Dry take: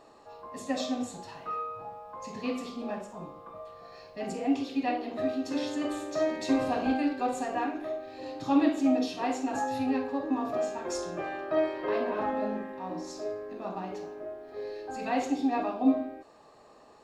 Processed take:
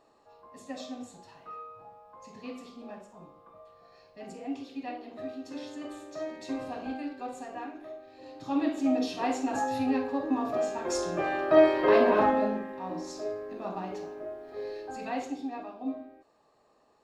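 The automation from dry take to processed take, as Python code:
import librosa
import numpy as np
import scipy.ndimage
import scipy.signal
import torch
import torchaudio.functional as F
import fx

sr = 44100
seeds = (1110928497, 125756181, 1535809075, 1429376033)

y = fx.gain(x, sr, db=fx.line((8.19, -8.5), (9.15, 1.0), (10.65, 1.0), (11.67, 8.5), (12.19, 8.5), (12.61, 0.5), (14.76, 0.5), (15.63, -10.5)))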